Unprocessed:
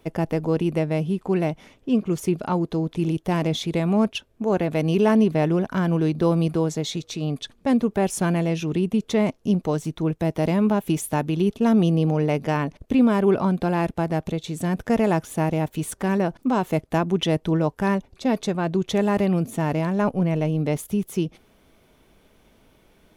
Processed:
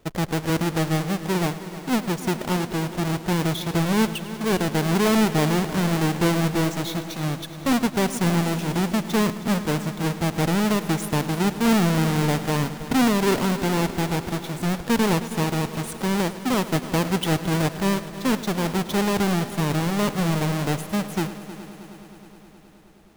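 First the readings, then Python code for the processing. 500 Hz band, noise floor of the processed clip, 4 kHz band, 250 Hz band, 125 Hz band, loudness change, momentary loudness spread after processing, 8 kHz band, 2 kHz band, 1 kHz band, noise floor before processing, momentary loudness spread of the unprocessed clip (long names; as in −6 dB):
−2.5 dB, −44 dBFS, +5.5 dB, −1.0 dB, 0.0 dB, −0.5 dB, 7 LU, +5.5 dB, +5.0 dB, +1.5 dB, −59 dBFS, 7 LU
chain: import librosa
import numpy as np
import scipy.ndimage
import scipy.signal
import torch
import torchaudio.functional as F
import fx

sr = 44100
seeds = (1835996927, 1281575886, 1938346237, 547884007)

y = fx.halfwave_hold(x, sr)
y = fx.echo_heads(y, sr, ms=105, heads='first and third', feedback_pct=74, wet_db=-16)
y = F.gain(torch.from_numpy(y), -5.5).numpy()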